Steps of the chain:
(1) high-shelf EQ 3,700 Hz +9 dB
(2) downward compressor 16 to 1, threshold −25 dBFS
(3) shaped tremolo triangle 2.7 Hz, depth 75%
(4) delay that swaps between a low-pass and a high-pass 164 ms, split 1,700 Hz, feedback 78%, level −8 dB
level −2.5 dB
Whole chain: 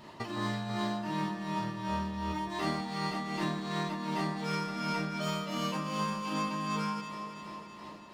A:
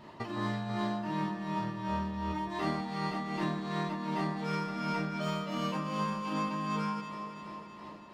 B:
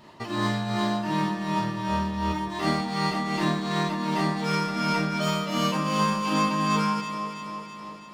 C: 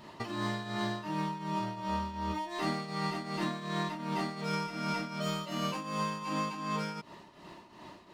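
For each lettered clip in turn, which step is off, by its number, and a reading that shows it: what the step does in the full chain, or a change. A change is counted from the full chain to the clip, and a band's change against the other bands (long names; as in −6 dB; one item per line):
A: 1, 8 kHz band −6.5 dB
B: 2, average gain reduction 6.5 dB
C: 4, echo-to-direct ratio −7.0 dB to none audible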